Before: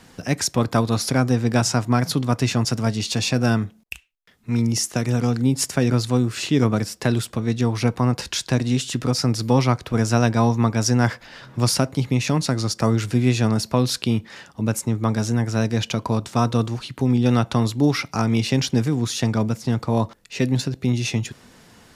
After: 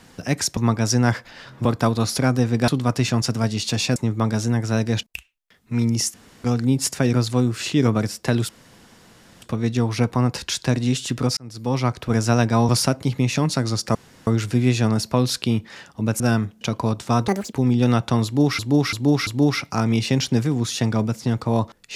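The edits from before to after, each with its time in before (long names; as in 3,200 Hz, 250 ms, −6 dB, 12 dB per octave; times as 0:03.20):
0:01.60–0:02.11: remove
0:03.39–0:03.80: swap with 0:14.80–0:15.87
0:04.91–0:05.21: fill with room tone
0:07.26: splice in room tone 0.93 s
0:09.21–0:09.84: fade in linear
0:10.53–0:11.61: move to 0:00.57
0:12.87: splice in room tone 0.32 s
0:16.54–0:16.96: play speed 170%
0:17.68–0:18.02: repeat, 4 plays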